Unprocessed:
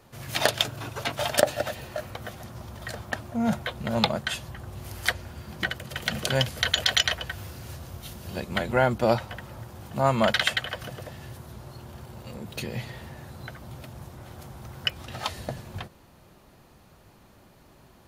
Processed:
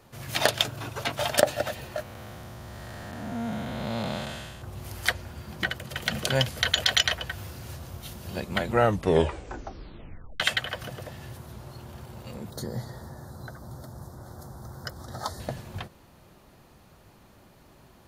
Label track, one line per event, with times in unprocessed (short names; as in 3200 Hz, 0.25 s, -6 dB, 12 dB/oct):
2.020000	4.620000	time blur width 0.371 s
8.680000	8.680000	tape stop 1.72 s
12.500000	15.400000	Butterworth band-stop 2600 Hz, Q 0.99